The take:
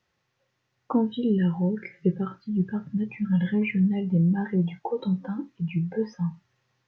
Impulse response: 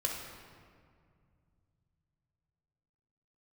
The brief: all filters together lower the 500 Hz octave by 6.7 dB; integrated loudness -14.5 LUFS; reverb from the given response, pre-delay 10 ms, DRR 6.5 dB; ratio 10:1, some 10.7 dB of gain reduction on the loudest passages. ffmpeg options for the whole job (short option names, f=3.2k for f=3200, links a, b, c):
-filter_complex "[0:a]equalizer=f=500:t=o:g=-8.5,acompressor=threshold=-30dB:ratio=10,asplit=2[a][b];[1:a]atrim=start_sample=2205,adelay=10[c];[b][c]afir=irnorm=-1:irlink=0,volume=-10.5dB[d];[a][d]amix=inputs=2:normalize=0,volume=20dB"